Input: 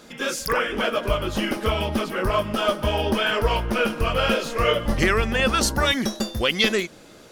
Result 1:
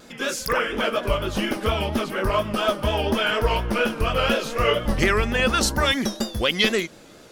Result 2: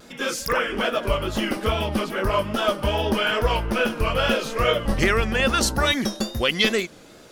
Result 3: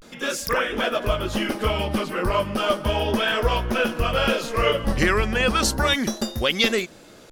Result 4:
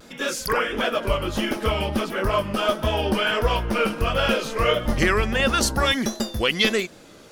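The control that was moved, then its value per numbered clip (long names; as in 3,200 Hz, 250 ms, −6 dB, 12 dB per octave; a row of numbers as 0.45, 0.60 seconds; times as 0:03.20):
pitch vibrato, speed: 4.2, 2.4, 0.34, 1.5 Hertz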